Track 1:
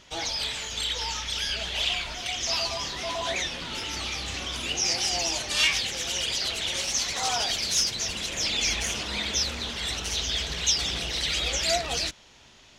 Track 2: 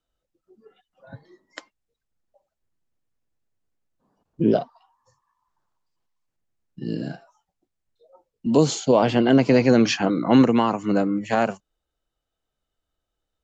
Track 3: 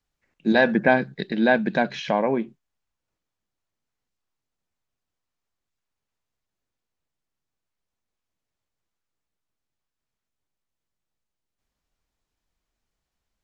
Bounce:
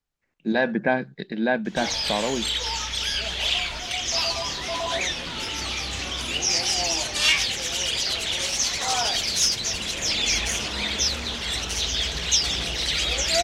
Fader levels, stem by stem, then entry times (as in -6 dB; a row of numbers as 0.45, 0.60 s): +3.0 dB, off, -4.0 dB; 1.65 s, off, 0.00 s